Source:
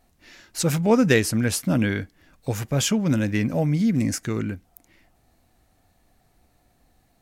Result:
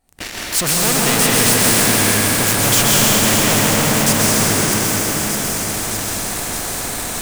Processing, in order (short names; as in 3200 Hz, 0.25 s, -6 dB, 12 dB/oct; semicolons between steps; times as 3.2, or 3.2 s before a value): Doppler pass-by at 2.82, 13 m/s, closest 11 m; recorder AGC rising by 68 dB/s; bell 8700 Hz +10 dB 0.3 oct; in parallel at -2 dB: compressor, threshold -57 dBFS, peak gain reduction 35 dB; on the sum: sample leveller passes 5; on a send: thin delay 0.615 s, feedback 66%, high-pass 5300 Hz, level -9 dB; on the sum: plate-style reverb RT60 4.4 s, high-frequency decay 0.75×, pre-delay 0.115 s, DRR -7 dB; spectral compressor 2:1; gain -7.5 dB